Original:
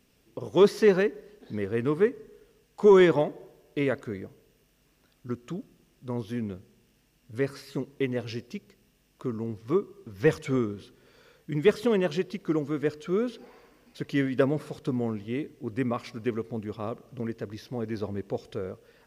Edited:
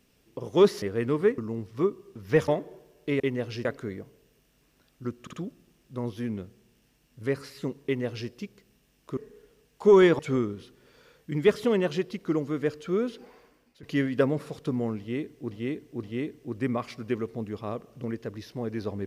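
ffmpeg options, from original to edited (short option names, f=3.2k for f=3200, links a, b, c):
-filter_complex "[0:a]asplit=13[a][b][c][d][e][f][g][h][i][j][k][l][m];[a]atrim=end=0.822[n];[b]atrim=start=1.588:end=2.152[o];[c]atrim=start=9.288:end=10.392[p];[d]atrim=start=3.168:end=3.892[q];[e]atrim=start=7.968:end=8.422[r];[f]atrim=start=3.888:end=5.512[s];[g]atrim=start=5.448:end=5.512[t];[h]atrim=start=5.448:end=9.292[u];[i]atrim=start=2.148:end=3.172[v];[j]atrim=start=10.388:end=14.03,asetpts=PTS-STARTPTS,afade=t=out:st=2.932:d=0.71:c=qsin:silence=0.125893[w];[k]atrim=start=14.03:end=15.712,asetpts=PTS-STARTPTS,afade=t=in:d=0.004:c=hsin:silence=0.125893[x];[l]atrim=start=15.188:end=15.712[y];[m]atrim=start=15.188[z];[n][o]acrossfade=d=0.004:c1=hsin:c2=hsin[aa];[aa][p]acrossfade=d=0.004:c1=hsin:c2=hsin[ab];[ab][q]acrossfade=d=0.004:c1=hsin:c2=hsin[ac];[ac][r]acrossfade=d=0.004:c1=hsin:c2=hsin[ad];[ad][s]acrossfade=d=0.004:c1=hsin:c2=hsin[ae];[ae][t]acrossfade=d=0.004:c1=hsin:c2=hsin[af];[af][u]acrossfade=d=0.004:c1=hsin:c2=hsin[ag];[ag][v]acrossfade=d=0.004:c1=hsin:c2=hsin[ah];[w][x]concat=n=2:v=0:a=1[ai];[ah][ai]acrossfade=d=0.004:c1=hsin:c2=hsin[aj];[aj][y]acrossfade=d=0.004:c1=hsin:c2=hsin[ak];[ak][z]acrossfade=d=0.004:c1=hsin:c2=hsin"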